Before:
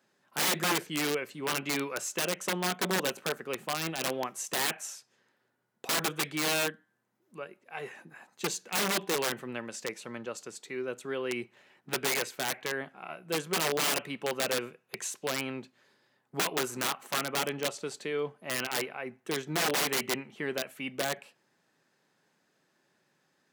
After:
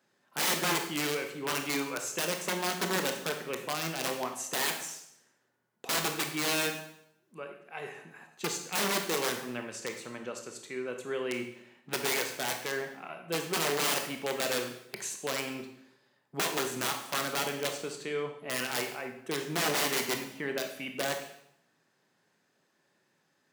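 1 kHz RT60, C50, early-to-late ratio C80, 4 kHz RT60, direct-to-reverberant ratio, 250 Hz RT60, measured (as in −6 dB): 0.70 s, 7.0 dB, 10.5 dB, 0.70 s, 4.5 dB, 0.75 s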